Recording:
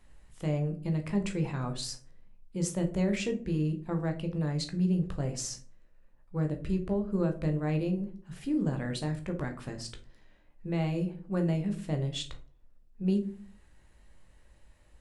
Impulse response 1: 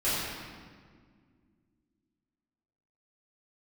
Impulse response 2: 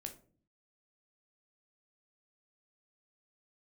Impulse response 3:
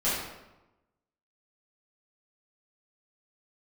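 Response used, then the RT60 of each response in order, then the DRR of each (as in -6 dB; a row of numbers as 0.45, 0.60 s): 2; 1.8, 0.45, 1.0 s; -13.0, 4.0, -12.0 dB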